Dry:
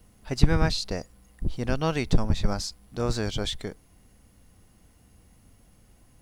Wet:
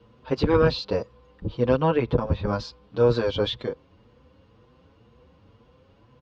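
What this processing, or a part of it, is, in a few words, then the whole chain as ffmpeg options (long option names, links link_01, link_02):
barber-pole flanger into a guitar amplifier: -filter_complex "[0:a]asplit=2[link_01][link_02];[link_02]adelay=6.7,afreqshift=2[link_03];[link_01][link_03]amix=inputs=2:normalize=1,asoftclip=type=tanh:threshold=-15dB,highpass=86,equalizer=frequency=190:width_type=q:width=4:gain=-5,equalizer=frequency=500:width_type=q:width=4:gain=10,equalizer=frequency=710:width_type=q:width=4:gain=-7,equalizer=frequency=1000:width_type=q:width=4:gain=7,equalizer=frequency=2000:width_type=q:width=4:gain=-8,lowpass=frequency=3800:width=0.5412,lowpass=frequency=3800:width=1.3066,asettb=1/sr,asplit=3[link_04][link_05][link_06];[link_04]atrim=end=1.784[link_07];[link_05]atrim=start=1.78:end=2.53,asetpts=PTS-STARTPTS,afade=type=in:duration=0.004:curve=qsin,afade=type=out:start_time=0.746:duration=0.004:curve=qsin,acrossover=split=2600[link_08][link_09];[link_09]acompressor=threshold=-60dB:ratio=4:attack=1:release=60[link_10];[link_08][link_10]amix=inputs=2:normalize=0[link_11];[link_06]atrim=start=2.526[link_12];[link_07][link_11]acrossfade=duration=0.004:curve1=hsin:curve2=qsin[link_13];[link_13][link_12]acrossfade=duration=0.004:curve1=qsin:curve2=hsin,volume=7.5dB"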